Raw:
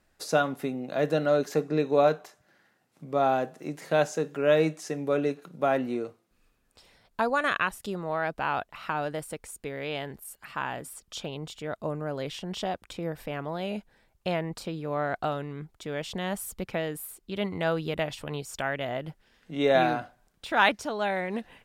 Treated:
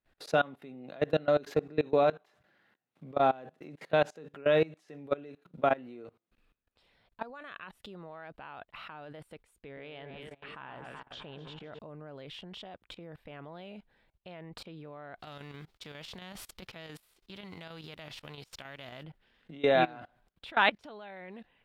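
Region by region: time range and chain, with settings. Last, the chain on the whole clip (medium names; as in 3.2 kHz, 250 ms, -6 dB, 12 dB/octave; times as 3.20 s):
9.60–11.79 s: distance through air 120 m + echo whose repeats swap between lows and highs 126 ms, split 1.5 kHz, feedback 76%, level -8.5 dB
15.19–19.02 s: formants flattened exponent 0.6 + peaking EQ 5.4 kHz +7.5 dB 0.89 oct + square tremolo 7.4 Hz, depth 65%, duty 80%
whole clip: resonant high shelf 4.7 kHz -9 dB, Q 1.5; level held to a coarse grid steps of 23 dB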